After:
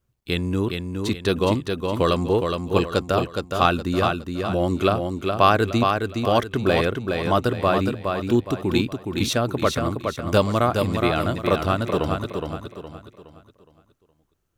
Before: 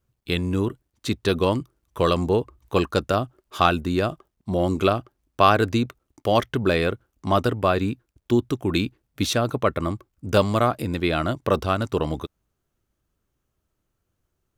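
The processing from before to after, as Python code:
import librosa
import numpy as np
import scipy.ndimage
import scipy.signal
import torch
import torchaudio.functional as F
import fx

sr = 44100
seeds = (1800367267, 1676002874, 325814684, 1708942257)

y = fx.echo_feedback(x, sr, ms=416, feedback_pct=37, wet_db=-5.0)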